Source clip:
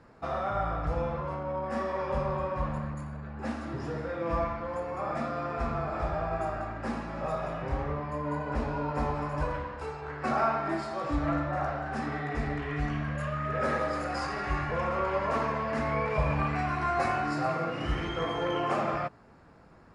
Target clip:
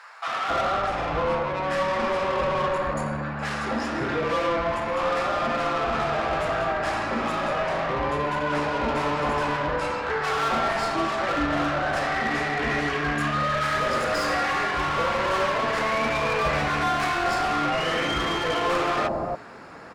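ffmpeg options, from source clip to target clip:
ffmpeg -i in.wav -filter_complex "[0:a]aemphasis=mode=production:type=cd,asplit=2[link_01][link_02];[link_02]highpass=frequency=720:poles=1,volume=26dB,asoftclip=type=tanh:threshold=-15.5dB[link_03];[link_01][link_03]amix=inputs=2:normalize=0,lowpass=frequency=2500:poles=1,volume=-6dB,acrossover=split=870[link_04][link_05];[link_04]adelay=270[link_06];[link_06][link_05]amix=inputs=2:normalize=0" out.wav

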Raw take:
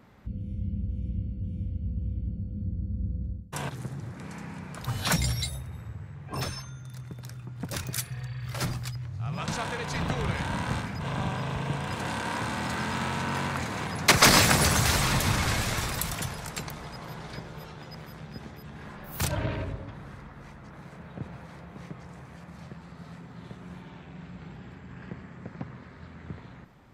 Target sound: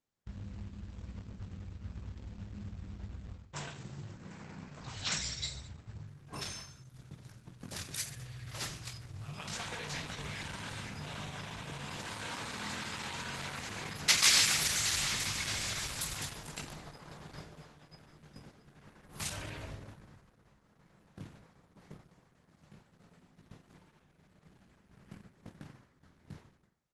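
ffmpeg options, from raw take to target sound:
ffmpeg -i in.wav -filter_complex "[0:a]asettb=1/sr,asplit=3[link_01][link_02][link_03];[link_01]atrim=end=24.034[link_04];[link_02]atrim=start=24.03:end=24.55,asetpts=PTS-STARTPTS,afade=type=in:duration=0.004:curve=qsin,afade=type=out:start_time=0.516:duration=0.004:curve=qsin,bandreject=frequency=60:width_type=h:width=6,bandreject=frequency=120:width_type=h:width=6,bandreject=frequency=180:width_type=h:width=6,bandreject=frequency=240:width_type=h:width=6,bandreject=frequency=300:width_type=h:width=6,bandreject=frequency=360:width_type=h:width=6[link_05];[link_03]atrim=start=24.546[link_06];[link_04][link_05]acrossfade=duration=0.004:curve1=hsin:curve2=qsin[link_07];[link_07][link_06]acrossfade=duration=0.004:curve1=qsin:curve2=hsin,agate=range=-33dB:threshold=-34dB:ratio=3:detection=peak,acrossover=split=1900[link_08][link_09];[link_08]acompressor=threshold=-38dB:ratio=10[link_10];[link_10][link_09]amix=inputs=2:normalize=0,acrusher=bits=3:mode=log:mix=0:aa=0.000001,asplit=2[link_11][link_12];[link_12]aecho=0:1:20|48|87.2|142.1|218.9:0.631|0.398|0.251|0.158|0.1[link_13];[link_11][link_13]amix=inputs=2:normalize=0,volume=-4.5dB" -ar 48000 -c:a libopus -b:a 12k out.opus

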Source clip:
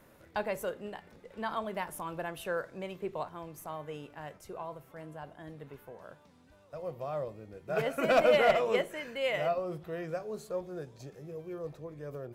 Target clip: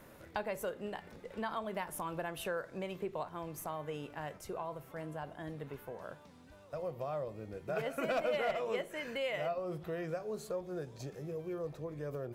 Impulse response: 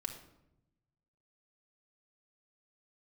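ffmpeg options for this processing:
-af "acompressor=threshold=-41dB:ratio=2.5,volume=3.5dB"

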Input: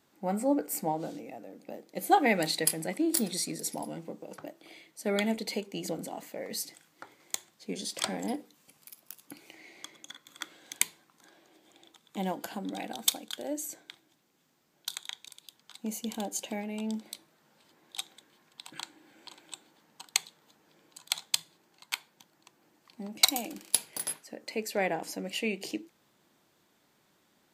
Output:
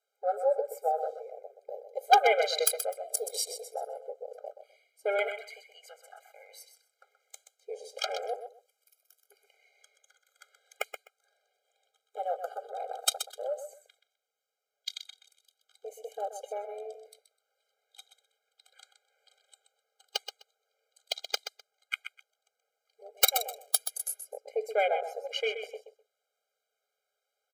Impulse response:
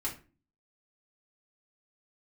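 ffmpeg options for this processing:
-filter_complex "[0:a]aeval=exprs='(mod(3.16*val(0)+1,2)-1)/3.16':channel_layout=same,afwtdn=0.0126,asettb=1/sr,asplit=3[link_01][link_02][link_03];[link_01]atrim=end=5.284[link_04];[link_02]atrim=start=5.28:end=6.69,asetpts=PTS-STARTPTS,afade=type=in:duration=0.004:curve=qsin,afade=type=out:start_time=1.406:duration=0.004:curve=qsin,highpass=frequency=1800:width_type=q:width=3[link_05];[link_03]atrim=start=6.686[link_06];[link_04][link_05]acrossfade=duration=0.004:curve1=hsin:curve2=qsin[link_07];[link_07][link_06]acrossfade=duration=0.004:curve1=qsin:curve2=hsin,aecho=1:1:127|254:0.335|0.0569,afftfilt=real='re*eq(mod(floor(b*sr/1024/410),2),1)':imag='im*eq(mod(floor(b*sr/1024/410),2),1)':win_size=1024:overlap=0.75,volume=4.5dB"

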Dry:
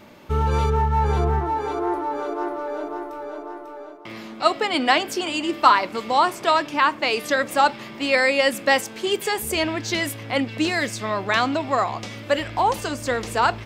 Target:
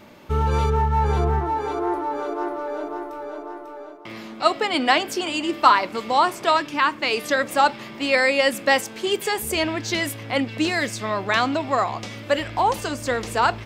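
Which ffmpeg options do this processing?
ffmpeg -i in.wav -filter_complex "[0:a]asettb=1/sr,asplit=3[link_01][link_02][link_03];[link_01]atrim=end=6.574[link_04];[link_02]atrim=start=6.57:end=7.11,asetpts=PTS-STARTPTS,afade=type=in:duration=0.004:curve=qsin,afade=type=out:start_time=0.536:duration=0.004:curve=qsin,equalizer=frequency=700:width=2.1:gain=-6.5[link_05];[link_03]atrim=start=7.106[link_06];[link_04][link_05]acrossfade=duration=0.004:curve1=hsin:curve2=qsin[link_07];[link_07][link_06]acrossfade=duration=0.004:curve1=qsin:curve2=hsin" out.wav

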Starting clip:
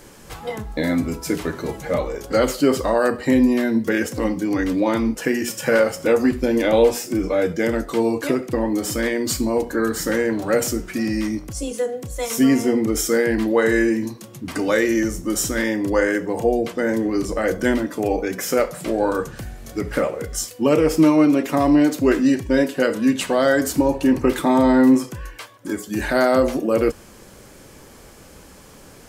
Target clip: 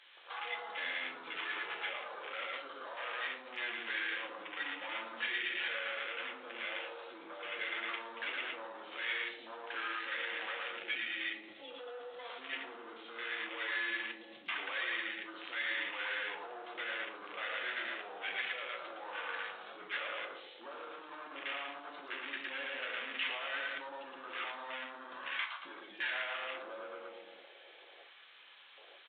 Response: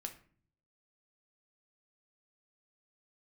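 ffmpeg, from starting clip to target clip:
-filter_complex "[0:a]acompressor=threshold=-18dB:ratio=8,aecho=1:1:113|226|339|452|565|678:0.708|0.319|0.143|0.0645|0.029|0.0131,asplit=2[link_01][link_02];[link_02]highpass=frequency=720:poles=1,volume=26dB,asoftclip=type=tanh:threshold=-7dB[link_03];[link_01][link_03]amix=inputs=2:normalize=0,lowpass=frequency=2800:poles=1,volume=-6dB,afwtdn=0.1,alimiter=limit=-17dB:level=0:latency=1:release=22,highpass=frequency=550:poles=1,aderivative[link_04];[1:a]atrim=start_sample=2205,atrim=end_sample=4410[link_05];[link_04][link_05]afir=irnorm=-1:irlink=0,aresample=8000,aresample=44100,highshelf=frequency=2600:gain=11.5,volume=1dB" -ar 22050 -c:a aac -b:a 24k

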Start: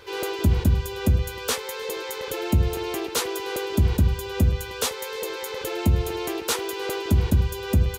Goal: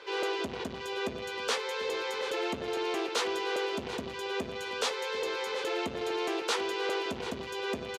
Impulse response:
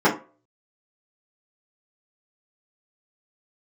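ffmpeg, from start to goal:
-filter_complex "[0:a]asoftclip=type=tanh:threshold=-20dB,highpass=370,lowpass=5000,asplit=2[link_01][link_02];[link_02]aecho=0:1:741|1482|2223|2964:0.158|0.065|0.0266|0.0109[link_03];[link_01][link_03]amix=inputs=2:normalize=0"

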